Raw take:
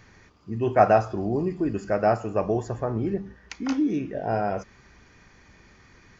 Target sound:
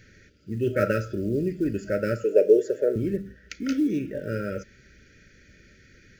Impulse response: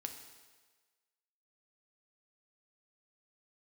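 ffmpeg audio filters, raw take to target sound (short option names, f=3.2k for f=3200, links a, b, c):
-filter_complex "[0:a]acrusher=bits=9:mode=log:mix=0:aa=0.000001,asettb=1/sr,asplit=3[a][b][c];[a]atrim=end=2.244[d];[b]atrim=start=2.24:end=2.96,asetpts=PTS-STARTPTS,afade=t=in:d=0.004:c=qsin,afade=t=out:st=0.716:d=0.004:c=qsin,highpass=f=430:t=q:w=3.9[e];[c]atrim=start=2.956[f];[d][e]acrossfade=d=0.004:c1=hsin:c2=qsin[g];[g][f]acrossfade=d=0.004:c1=qsin:c2=hsin,afftfilt=real='re*(1-between(b*sr/4096,620,1300))':imag='im*(1-between(b*sr/4096,620,1300))':win_size=4096:overlap=0.75"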